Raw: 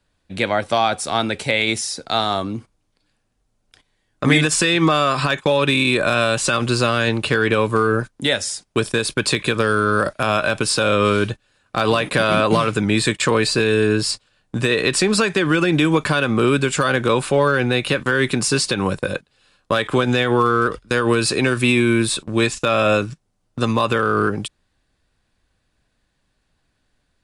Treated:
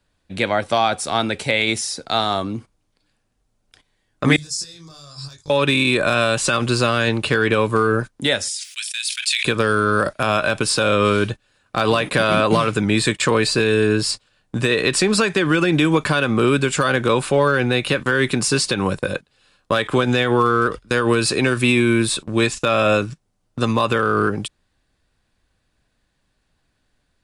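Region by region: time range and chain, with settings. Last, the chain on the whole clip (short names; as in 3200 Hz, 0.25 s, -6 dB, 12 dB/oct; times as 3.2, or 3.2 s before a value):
4.36–5.5 compressor 2.5:1, threshold -20 dBFS + EQ curve 120 Hz 0 dB, 200 Hz -18 dB, 2900 Hz -23 dB, 5000 Hz +7 dB, 8900 Hz -3 dB + detuned doubles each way 31 cents
8.48–9.45 inverse Chebyshev high-pass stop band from 680 Hz, stop band 60 dB + sustainer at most 29 dB/s
whole clip: dry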